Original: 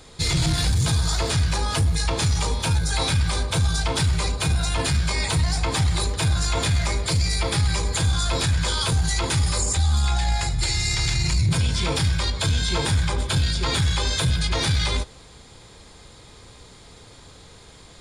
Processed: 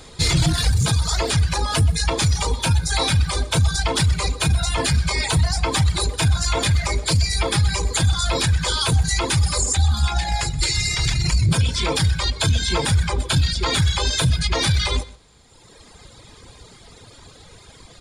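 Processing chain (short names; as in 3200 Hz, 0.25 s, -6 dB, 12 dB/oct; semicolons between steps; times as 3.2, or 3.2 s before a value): on a send: echo 0.125 s -10.5 dB; on the sum: reverb removal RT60 1.6 s; gain +4.5 dB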